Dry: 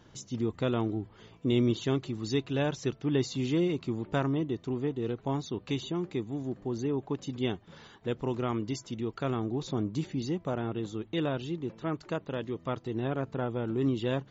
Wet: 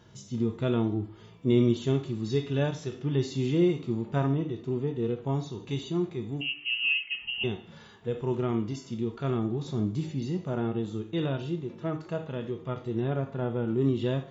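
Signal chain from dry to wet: 6.41–7.44 inverted band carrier 3000 Hz; two-slope reverb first 0.45 s, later 1.8 s, from -26 dB, DRR 9 dB; harmonic-percussive split percussive -13 dB; gain +3.5 dB

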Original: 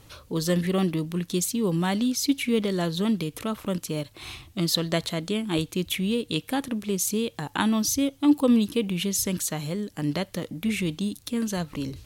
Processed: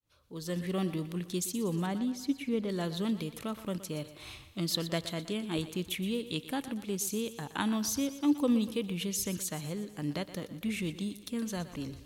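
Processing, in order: opening faded in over 0.82 s; 1.86–2.69 high shelf 2200 Hz -11 dB; thinning echo 0.12 s, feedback 55%, high-pass 210 Hz, level -13.5 dB; gain -7.5 dB

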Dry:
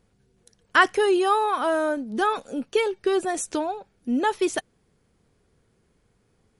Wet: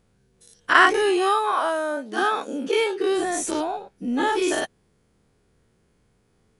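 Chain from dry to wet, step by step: spectral dilation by 0.12 s; 1.51–3.15 HPF 380 Hz -> 130 Hz 24 dB/oct; gain -3.5 dB

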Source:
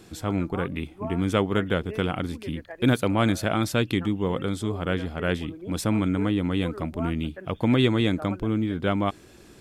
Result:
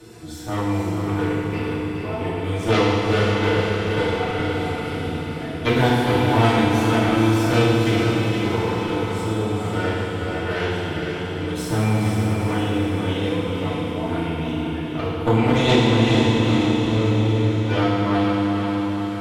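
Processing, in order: notch comb 270 Hz; plain phase-vocoder stretch 2×; added harmonics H 3 -11 dB, 6 -28 dB, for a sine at -10 dBFS; diffused feedback echo 0.469 s, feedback 52%, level -5 dB; FDN reverb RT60 1.8 s, low-frequency decay 1.05×, high-frequency decay 1×, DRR -10 dB; three-band squash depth 40%; gain +5.5 dB

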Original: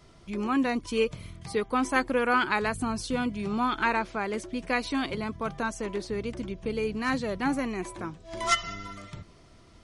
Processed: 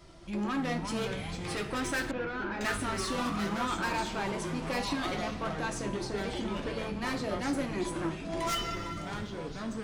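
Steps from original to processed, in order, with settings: 1.04–3.03 spectral gain 1300–4000 Hz +7 dB; soft clip -30 dBFS, distortion -5 dB; two-slope reverb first 0.3 s, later 2.6 s, from -17 dB, DRR 3.5 dB; echoes that change speed 0.221 s, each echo -4 st, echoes 3, each echo -6 dB; 2.11–2.61 tape spacing loss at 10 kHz 41 dB

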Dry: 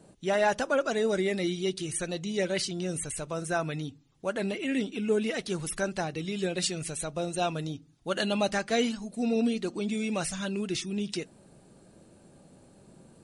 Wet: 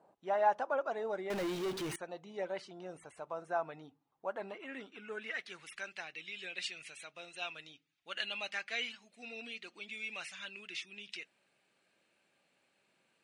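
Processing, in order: band-pass sweep 870 Hz -> 2400 Hz, 4.32–5.76; 1.3–1.96 power-law curve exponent 0.35

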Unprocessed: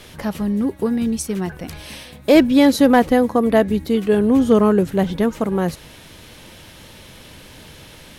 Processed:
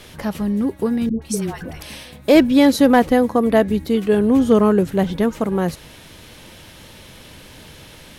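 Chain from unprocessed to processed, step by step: 1.09–1.83 dispersion highs, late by 0.128 s, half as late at 620 Hz

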